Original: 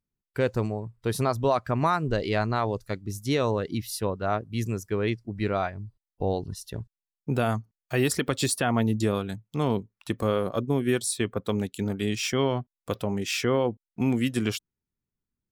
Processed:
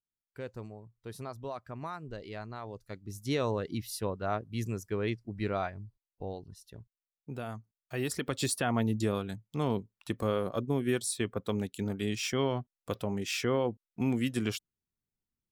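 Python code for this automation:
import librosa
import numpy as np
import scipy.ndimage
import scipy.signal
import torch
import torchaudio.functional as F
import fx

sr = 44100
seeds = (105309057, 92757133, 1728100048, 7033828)

y = fx.gain(x, sr, db=fx.line((2.62, -16.0), (3.32, -5.5), (5.73, -5.5), (6.42, -14.0), (7.55, -14.0), (8.48, -5.0)))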